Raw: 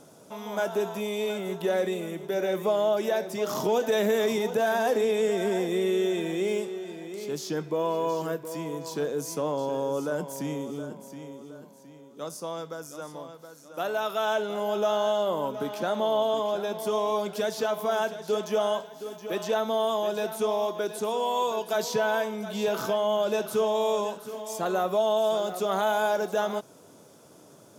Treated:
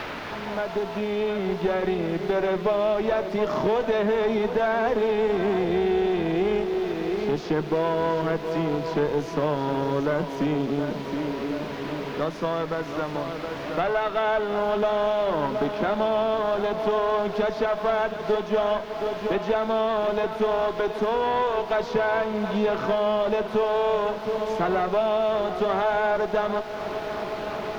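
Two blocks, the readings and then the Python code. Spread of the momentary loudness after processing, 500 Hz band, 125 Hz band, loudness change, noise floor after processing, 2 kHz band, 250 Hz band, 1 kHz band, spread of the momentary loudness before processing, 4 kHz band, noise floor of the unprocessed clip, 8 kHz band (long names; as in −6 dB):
6 LU, +3.0 dB, +7.5 dB, +3.0 dB, −34 dBFS, +4.0 dB, +5.5 dB, +4.0 dB, 12 LU, −0.5 dB, −53 dBFS, below −10 dB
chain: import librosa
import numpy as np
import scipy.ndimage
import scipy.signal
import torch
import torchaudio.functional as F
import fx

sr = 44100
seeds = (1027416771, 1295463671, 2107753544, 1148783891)

p1 = fx.fade_in_head(x, sr, length_s=2.36)
p2 = fx.notch(p1, sr, hz=540.0, q=12.0)
p3 = fx.rider(p2, sr, range_db=4, speed_s=0.5)
p4 = p2 + (p3 * 10.0 ** (-1.5 / 20.0))
p5 = fx.quant_dither(p4, sr, seeds[0], bits=6, dither='triangular')
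p6 = fx.cheby_harmonics(p5, sr, harmonics=(6,), levels_db=(-19,), full_scale_db=-9.0)
p7 = fx.air_absorb(p6, sr, metres=290.0)
p8 = p7 + fx.echo_bbd(p7, sr, ms=364, stages=4096, feedback_pct=85, wet_db=-19.0, dry=0)
p9 = fx.band_squash(p8, sr, depth_pct=70)
y = p9 * 10.0 ** (-1.5 / 20.0)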